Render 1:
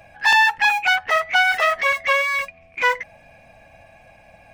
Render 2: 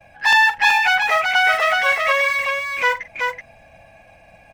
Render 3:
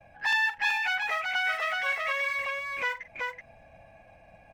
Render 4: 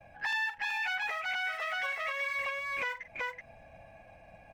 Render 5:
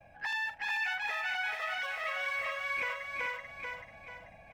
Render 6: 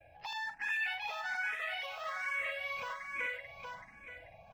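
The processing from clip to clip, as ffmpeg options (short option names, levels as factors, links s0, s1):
-af "agate=range=0.0224:threshold=0.00447:ratio=3:detection=peak,aecho=1:1:43|47|378:0.15|0.188|0.631"
-filter_complex "[0:a]highshelf=f=2300:g=-9.5,acrossover=split=1500[s0][s1];[s0]acompressor=threshold=0.0282:ratio=6[s2];[s2][s1]amix=inputs=2:normalize=0,volume=0.562"
-af "alimiter=level_in=1.12:limit=0.0631:level=0:latency=1:release=279,volume=0.891"
-af "aecho=1:1:438|876|1314|1752|2190:0.668|0.274|0.112|0.0461|0.0189,volume=0.75"
-filter_complex "[0:a]asplit=2[s0][s1];[s1]afreqshift=1.2[s2];[s0][s2]amix=inputs=2:normalize=1"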